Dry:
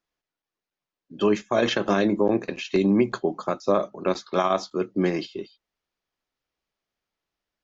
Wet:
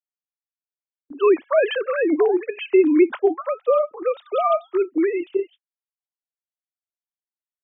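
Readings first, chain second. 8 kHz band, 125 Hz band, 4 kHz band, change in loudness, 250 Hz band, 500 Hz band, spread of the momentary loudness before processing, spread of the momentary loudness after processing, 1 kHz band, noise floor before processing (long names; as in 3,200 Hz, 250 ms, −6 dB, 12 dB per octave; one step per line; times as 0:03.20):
can't be measured, below −30 dB, −3.5 dB, +4.0 dB, +2.0 dB, +5.5 dB, 7 LU, 8 LU, +2.0 dB, below −85 dBFS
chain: three sine waves on the formant tracks
noise gate with hold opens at −45 dBFS
level +4 dB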